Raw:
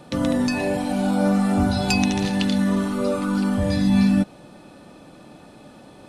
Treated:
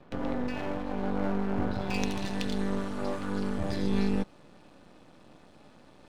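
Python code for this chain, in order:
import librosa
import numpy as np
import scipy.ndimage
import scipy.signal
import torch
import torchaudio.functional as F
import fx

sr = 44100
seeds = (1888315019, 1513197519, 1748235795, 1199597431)

y = fx.lowpass(x, sr, hz=fx.steps((0.0, 2400.0), (1.94, 7800.0)), slope=12)
y = np.maximum(y, 0.0)
y = y * 10.0 ** (-6.0 / 20.0)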